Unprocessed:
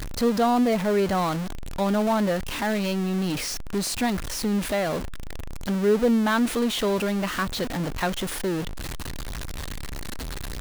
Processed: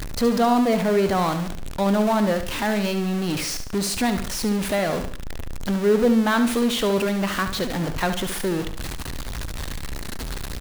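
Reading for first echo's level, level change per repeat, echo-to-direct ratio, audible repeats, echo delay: −9.5 dB, −8.0 dB, −9.0 dB, 3, 71 ms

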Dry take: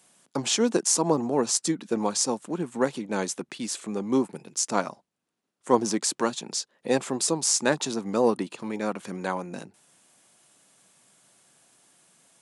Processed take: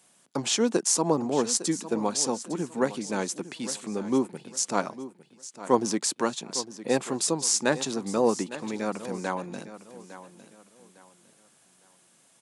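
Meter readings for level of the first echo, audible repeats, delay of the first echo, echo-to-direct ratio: −14.5 dB, 2, 856 ms, −14.0 dB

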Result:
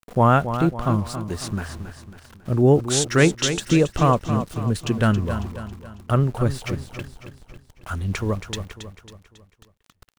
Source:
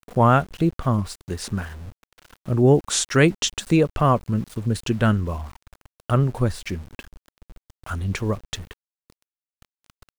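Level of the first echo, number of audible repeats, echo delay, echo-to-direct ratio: −10.0 dB, 4, 274 ms, −9.0 dB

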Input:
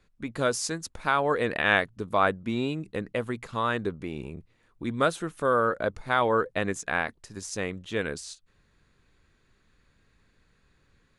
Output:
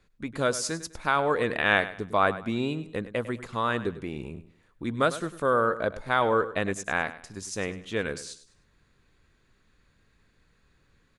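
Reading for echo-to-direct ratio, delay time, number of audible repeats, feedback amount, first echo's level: −14.0 dB, 101 ms, 3, 31%, −14.5 dB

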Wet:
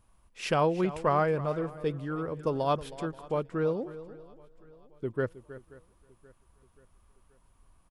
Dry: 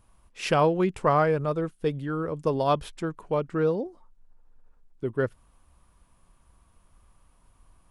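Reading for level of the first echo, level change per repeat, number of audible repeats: −15.5 dB, repeats not evenly spaced, 4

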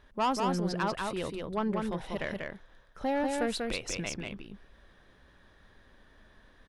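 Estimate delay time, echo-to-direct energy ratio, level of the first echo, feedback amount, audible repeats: 191 ms, −3.5 dB, −3.5 dB, repeats not evenly spaced, 1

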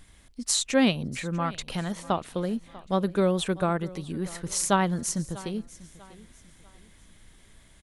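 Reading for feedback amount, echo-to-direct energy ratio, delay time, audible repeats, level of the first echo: 35%, −19.0 dB, 644 ms, 2, −19.5 dB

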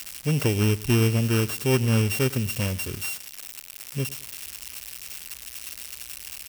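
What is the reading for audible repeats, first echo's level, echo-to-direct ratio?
2, −19.5 dB, −19.0 dB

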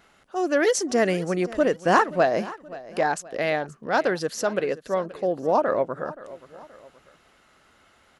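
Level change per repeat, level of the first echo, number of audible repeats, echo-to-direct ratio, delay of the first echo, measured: −7.0 dB, −18.0 dB, 2, −17.0 dB, 526 ms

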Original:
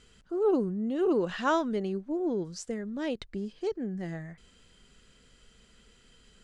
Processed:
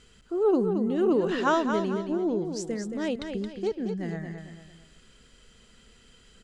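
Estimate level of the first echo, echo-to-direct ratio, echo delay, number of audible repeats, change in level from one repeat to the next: −7.0 dB, −6.5 dB, 223 ms, 3, −8.5 dB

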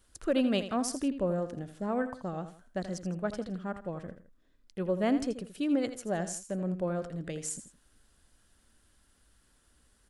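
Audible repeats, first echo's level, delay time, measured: 2, −11.5 dB, 82 ms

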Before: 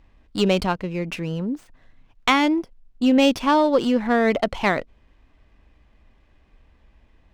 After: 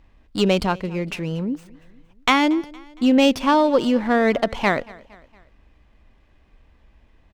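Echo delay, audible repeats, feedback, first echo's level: 231 ms, 3, 52%, −23.0 dB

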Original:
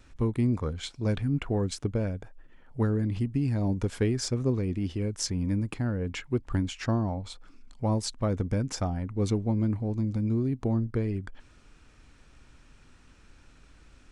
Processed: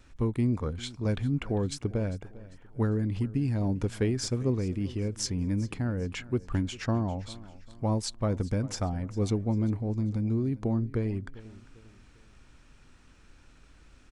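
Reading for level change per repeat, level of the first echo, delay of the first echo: −8.0 dB, −19.0 dB, 398 ms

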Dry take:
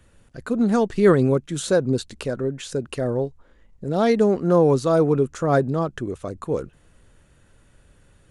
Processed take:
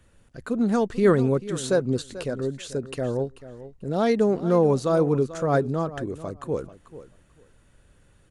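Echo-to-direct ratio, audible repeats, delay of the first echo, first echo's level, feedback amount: −15.0 dB, 2, 439 ms, −15.0 dB, 17%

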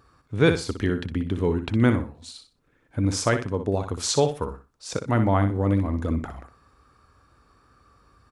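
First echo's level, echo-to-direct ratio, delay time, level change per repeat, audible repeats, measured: −9.0 dB, −9.0 dB, 61 ms, −13.0 dB, 3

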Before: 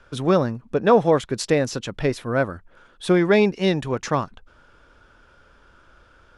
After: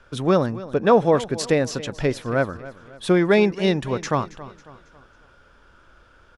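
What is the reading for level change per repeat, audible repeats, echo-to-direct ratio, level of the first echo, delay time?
−7.0 dB, 3, −16.0 dB, −17.0 dB, 274 ms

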